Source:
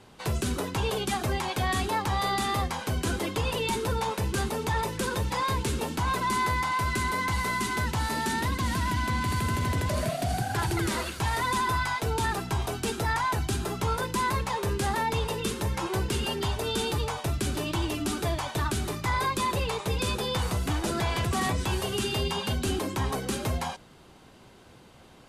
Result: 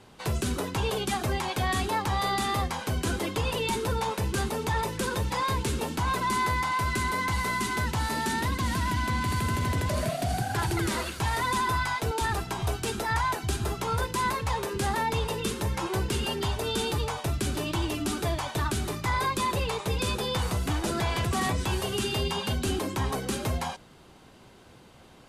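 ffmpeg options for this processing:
-filter_complex "[0:a]asettb=1/sr,asplit=3[s0][s1][s2];[s0]atrim=end=12.114[s3];[s1]atrim=start=12.11:end=14.76,asetpts=PTS-STARTPTS,afade=t=in:d=0.004:c=qsin,afade=t=out:st=2.646:d=0.004:c=qsin,acrossover=split=230[s4][s5];[s4]adelay=100[s6];[s6][s5]amix=inputs=2:normalize=0,atrim=end_sample=116865[s7];[s2]atrim=start=14.756[s8];[s3][s7]acrossfade=d=0.004:c1=hsin:c2=qsin[s9];[s9][s8]acrossfade=d=0.004:c1=qsin:c2=hsin"

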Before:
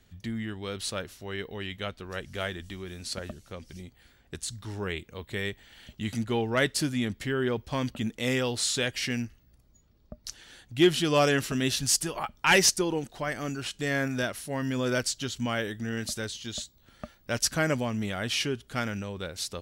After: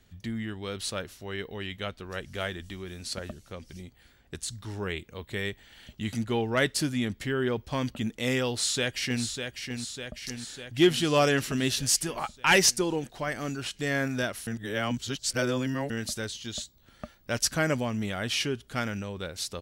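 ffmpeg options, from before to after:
-filter_complex "[0:a]asplit=2[s0][s1];[s1]afade=t=in:st=8.5:d=0.01,afade=t=out:st=9.24:d=0.01,aecho=0:1:600|1200|1800|2400|3000|3600|4200|4800|5400:0.473151|0.307548|0.199906|0.129939|0.0844605|0.0548993|0.0356845|0.023195|0.0150767[s2];[s0][s2]amix=inputs=2:normalize=0,asplit=3[s3][s4][s5];[s3]atrim=end=14.472[s6];[s4]atrim=start=14.468:end=15.902,asetpts=PTS-STARTPTS,areverse[s7];[s5]atrim=start=15.898[s8];[s6][s7]acrossfade=d=0.004:c1=hsin:c2=hsin[s9];[s9][s8]acrossfade=d=0.004:c1=hsin:c2=hsin"

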